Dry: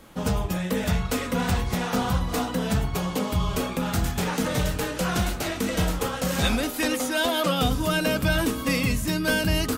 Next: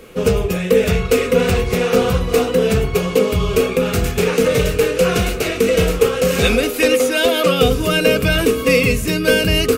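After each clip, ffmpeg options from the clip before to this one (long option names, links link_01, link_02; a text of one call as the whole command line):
ffmpeg -i in.wav -af "superequalizer=7b=3.98:9b=0.501:12b=2,volume=6dB" out.wav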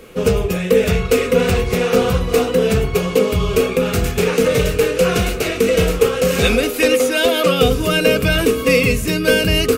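ffmpeg -i in.wav -af anull out.wav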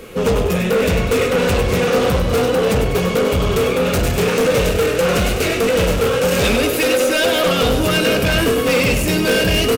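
ffmpeg -i in.wav -filter_complex "[0:a]asoftclip=type=tanh:threshold=-17.5dB,asplit=7[link_01][link_02][link_03][link_04][link_05][link_06][link_07];[link_02]adelay=98,afreqshift=38,volume=-8dB[link_08];[link_03]adelay=196,afreqshift=76,volume=-14.4dB[link_09];[link_04]adelay=294,afreqshift=114,volume=-20.8dB[link_10];[link_05]adelay=392,afreqshift=152,volume=-27.1dB[link_11];[link_06]adelay=490,afreqshift=190,volume=-33.5dB[link_12];[link_07]adelay=588,afreqshift=228,volume=-39.9dB[link_13];[link_01][link_08][link_09][link_10][link_11][link_12][link_13]amix=inputs=7:normalize=0,volume=4.5dB" out.wav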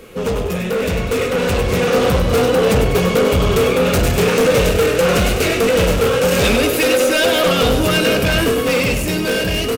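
ffmpeg -i in.wav -af "dynaudnorm=framelen=700:gausssize=5:maxgain=11.5dB,volume=-3.5dB" out.wav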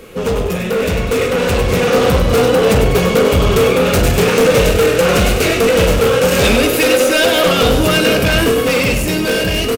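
ffmpeg -i in.wav -filter_complex "[0:a]asplit=2[link_01][link_02];[link_02]adelay=42,volume=-14dB[link_03];[link_01][link_03]amix=inputs=2:normalize=0,volume=2.5dB" out.wav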